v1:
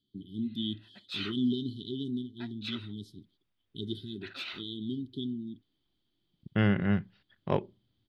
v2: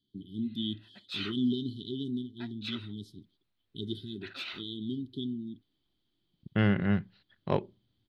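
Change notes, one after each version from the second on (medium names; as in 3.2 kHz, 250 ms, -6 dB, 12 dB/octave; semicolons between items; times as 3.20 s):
second voice: remove Butterworth band-stop 4.1 kHz, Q 6.9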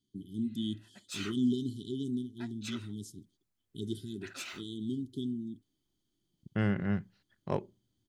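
second voice -4.0 dB; master: add resonant high shelf 5.2 kHz +11 dB, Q 3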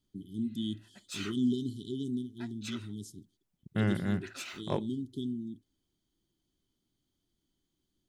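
second voice: entry -2.80 s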